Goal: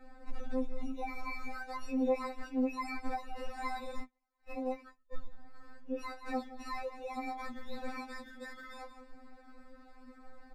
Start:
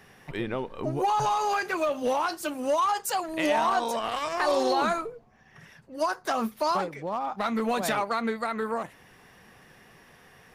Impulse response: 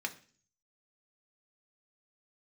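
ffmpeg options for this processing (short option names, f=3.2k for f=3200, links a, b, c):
-filter_complex "[0:a]asplit=2[a][b];[b]adelay=169,lowpass=f=2k:p=1,volume=-16dB,asplit=2[c][d];[d]adelay=169,lowpass=f=2k:p=1,volume=0.16[e];[a][c][e]amix=inputs=3:normalize=0,acrusher=samples=14:mix=1:aa=0.000001,aemphasis=mode=reproduction:type=riaa,asplit=3[f][g][h];[f]afade=t=out:st=4.02:d=0.02[i];[g]agate=range=-49dB:threshold=-18dB:ratio=16:detection=peak,afade=t=in:st=4.02:d=0.02,afade=t=out:st=5.12:d=0.02[j];[h]afade=t=in:st=5.12:d=0.02[k];[i][j][k]amix=inputs=3:normalize=0,acompressor=threshold=-32dB:ratio=3,flanger=delay=1.5:depth=9.1:regen=69:speed=0.58:shape=triangular,afftfilt=real='re*3.46*eq(mod(b,12),0)':imag='im*3.46*eq(mod(b,12),0)':win_size=2048:overlap=0.75,volume=1.5dB"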